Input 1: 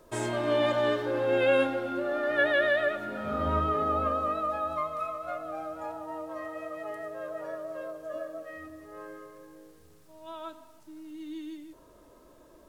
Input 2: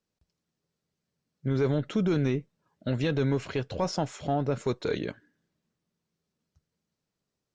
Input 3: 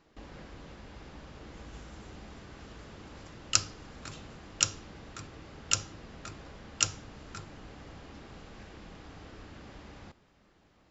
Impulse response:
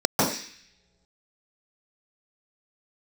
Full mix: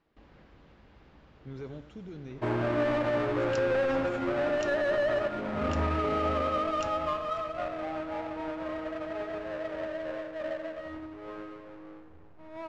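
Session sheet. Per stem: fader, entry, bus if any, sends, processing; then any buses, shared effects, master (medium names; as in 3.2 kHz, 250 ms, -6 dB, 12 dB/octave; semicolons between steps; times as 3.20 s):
-1.5 dB, 2.30 s, no send, echo send -11 dB, square wave that keeps the level; low-pass 1.8 kHz 12 dB/octave
-15.0 dB, 0.00 s, no send, echo send -12 dB, rotary cabinet horn 1.1 Hz
-8.5 dB, 0.00 s, no send, no echo send, low-pass 3.6 kHz 12 dB/octave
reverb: none
echo: delay 92 ms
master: peak limiter -22 dBFS, peak gain reduction 8.5 dB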